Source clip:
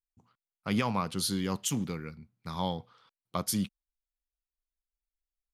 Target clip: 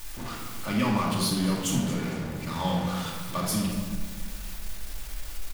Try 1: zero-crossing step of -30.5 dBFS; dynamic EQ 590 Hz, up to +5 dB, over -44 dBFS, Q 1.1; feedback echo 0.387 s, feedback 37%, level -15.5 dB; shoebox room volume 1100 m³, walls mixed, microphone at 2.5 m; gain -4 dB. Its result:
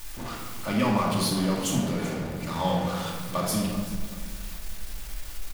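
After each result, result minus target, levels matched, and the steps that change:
echo 0.157 s late; 500 Hz band +3.0 dB
change: feedback echo 0.23 s, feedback 37%, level -15.5 dB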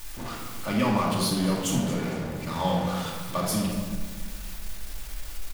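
500 Hz band +3.0 dB
remove: dynamic EQ 590 Hz, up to +5 dB, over -44 dBFS, Q 1.1

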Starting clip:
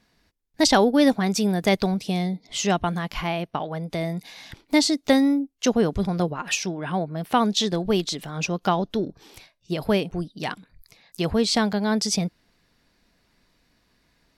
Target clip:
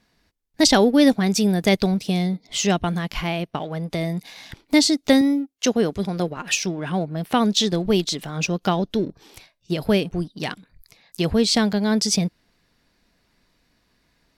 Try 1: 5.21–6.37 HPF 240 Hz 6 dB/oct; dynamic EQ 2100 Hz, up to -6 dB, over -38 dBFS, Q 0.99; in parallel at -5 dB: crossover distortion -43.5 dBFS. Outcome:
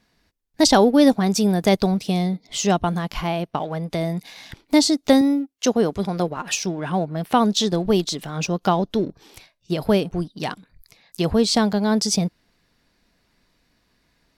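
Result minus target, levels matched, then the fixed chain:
1000 Hz band +3.5 dB
5.21–6.37 HPF 240 Hz 6 dB/oct; dynamic EQ 980 Hz, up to -6 dB, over -38 dBFS, Q 0.99; in parallel at -5 dB: crossover distortion -43.5 dBFS

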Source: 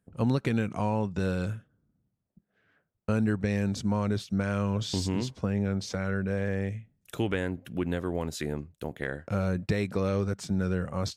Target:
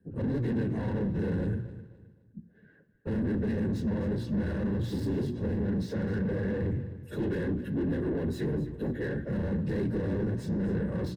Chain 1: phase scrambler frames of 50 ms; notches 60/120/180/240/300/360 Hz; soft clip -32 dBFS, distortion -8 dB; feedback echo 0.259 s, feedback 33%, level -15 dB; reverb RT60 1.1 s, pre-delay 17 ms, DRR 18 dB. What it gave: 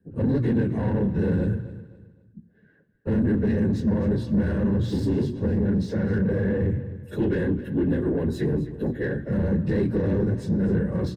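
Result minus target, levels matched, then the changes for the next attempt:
soft clip: distortion -4 dB
change: soft clip -40.5 dBFS, distortion -4 dB

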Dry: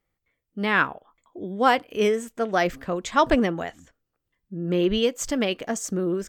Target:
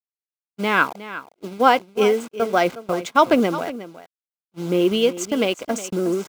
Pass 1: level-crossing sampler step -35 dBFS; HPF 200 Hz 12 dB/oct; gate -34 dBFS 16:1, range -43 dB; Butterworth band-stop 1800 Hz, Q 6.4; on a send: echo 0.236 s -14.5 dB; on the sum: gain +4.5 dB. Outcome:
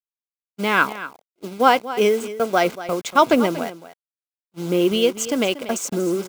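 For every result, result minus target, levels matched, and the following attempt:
echo 0.126 s early; 8000 Hz band +3.5 dB
level-crossing sampler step -35 dBFS; HPF 200 Hz 12 dB/oct; gate -34 dBFS 16:1, range -43 dB; Butterworth band-stop 1800 Hz, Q 6.4; on a send: echo 0.362 s -14.5 dB; on the sum: gain +4.5 dB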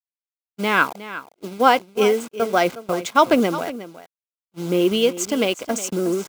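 8000 Hz band +4.0 dB
level-crossing sampler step -35 dBFS; HPF 200 Hz 12 dB/oct; high shelf 5500 Hz -5.5 dB; gate -34 dBFS 16:1, range -43 dB; Butterworth band-stop 1800 Hz, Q 6.4; on a send: echo 0.362 s -14.5 dB; on the sum: gain +4.5 dB

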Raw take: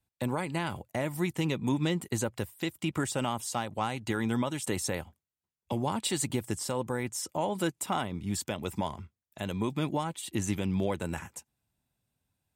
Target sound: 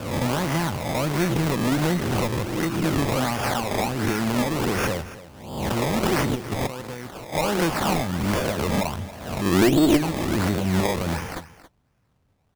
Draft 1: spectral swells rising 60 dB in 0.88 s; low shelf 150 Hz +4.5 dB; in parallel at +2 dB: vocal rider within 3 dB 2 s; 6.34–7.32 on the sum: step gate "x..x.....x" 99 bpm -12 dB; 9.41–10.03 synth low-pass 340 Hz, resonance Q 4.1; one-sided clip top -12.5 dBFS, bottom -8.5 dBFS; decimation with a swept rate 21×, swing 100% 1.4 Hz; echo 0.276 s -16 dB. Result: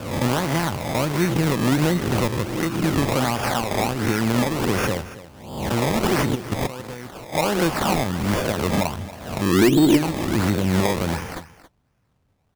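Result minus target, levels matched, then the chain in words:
one-sided clip: distortion -8 dB
spectral swells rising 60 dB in 0.88 s; low shelf 150 Hz +4.5 dB; in parallel at +2 dB: vocal rider within 3 dB 2 s; 6.34–7.32 on the sum: step gate "x..x.....x" 99 bpm -12 dB; 9.41–10.03 synth low-pass 340 Hz, resonance Q 4.1; one-sided clip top -21 dBFS, bottom -8.5 dBFS; decimation with a swept rate 21×, swing 100% 1.4 Hz; echo 0.276 s -16 dB

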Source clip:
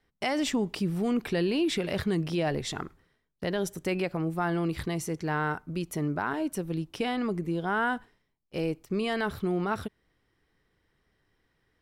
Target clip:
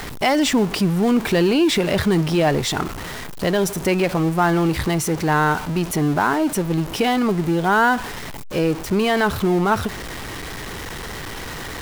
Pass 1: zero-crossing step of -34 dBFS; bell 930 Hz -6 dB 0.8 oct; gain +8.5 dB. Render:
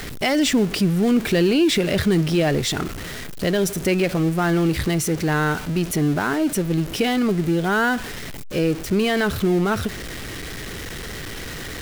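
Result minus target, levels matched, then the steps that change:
1000 Hz band -5.5 dB
change: bell 930 Hz +3.5 dB 0.8 oct

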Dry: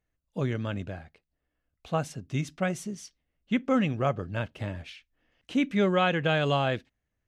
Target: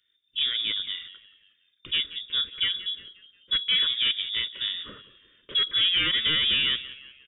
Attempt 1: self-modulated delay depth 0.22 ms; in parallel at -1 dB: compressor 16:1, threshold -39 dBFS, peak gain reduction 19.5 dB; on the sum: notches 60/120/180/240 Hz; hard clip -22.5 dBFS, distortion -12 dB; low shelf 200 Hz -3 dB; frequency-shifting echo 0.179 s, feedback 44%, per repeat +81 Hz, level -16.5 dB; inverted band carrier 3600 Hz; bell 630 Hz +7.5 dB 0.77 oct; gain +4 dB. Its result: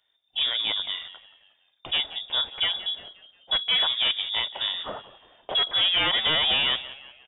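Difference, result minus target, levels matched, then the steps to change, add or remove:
1000 Hz band +10.5 dB; compressor: peak gain reduction -9.5 dB
change: compressor 16:1, threshold -49 dBFS, peak gain reduction 29 dB; add after inverted band: Butterworth band-stop 770 Hz, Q 0.72

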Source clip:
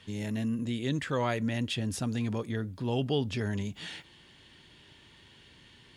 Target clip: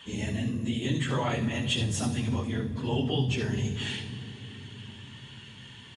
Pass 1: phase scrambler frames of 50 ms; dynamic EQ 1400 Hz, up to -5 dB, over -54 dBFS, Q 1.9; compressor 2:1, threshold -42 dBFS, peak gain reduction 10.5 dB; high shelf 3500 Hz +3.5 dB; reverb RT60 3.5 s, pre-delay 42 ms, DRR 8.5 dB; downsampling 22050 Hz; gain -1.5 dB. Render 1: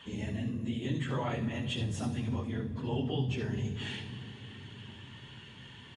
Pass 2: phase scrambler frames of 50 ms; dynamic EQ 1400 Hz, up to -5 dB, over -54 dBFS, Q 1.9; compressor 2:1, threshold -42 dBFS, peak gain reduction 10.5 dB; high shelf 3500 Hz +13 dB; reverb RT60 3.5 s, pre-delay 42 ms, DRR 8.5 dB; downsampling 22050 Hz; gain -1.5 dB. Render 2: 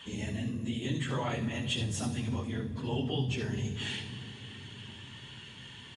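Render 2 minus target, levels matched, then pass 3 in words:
compressor: peak gain reduction +4.5 dB
phase scrambler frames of 50 ms; dynamic EQ 1400 Hz, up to -5 dB, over -54 dBFS, Q 1.9; compressor 2:1, threshold -33 dBFS, peak gain reduction 6 dB; high shelf 3500 Hz +13 dB; reverb RT60 3.5 s, pre-delay 42 ms, DRR 8.5 dB; downsampling 22050 Hz; gain -1.5 dB

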